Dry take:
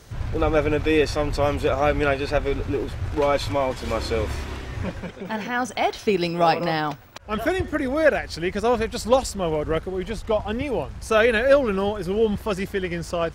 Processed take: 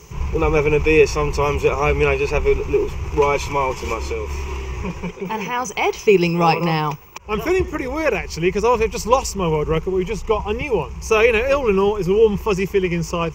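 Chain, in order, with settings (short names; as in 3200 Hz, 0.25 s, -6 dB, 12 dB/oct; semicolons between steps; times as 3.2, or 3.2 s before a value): ripple EQ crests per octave 0.76, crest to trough 15 dB; 3.93–4.9 compressor 10:1, threshold -23 dBFS, peak gain reduction 8.5 dB; gain +2 dB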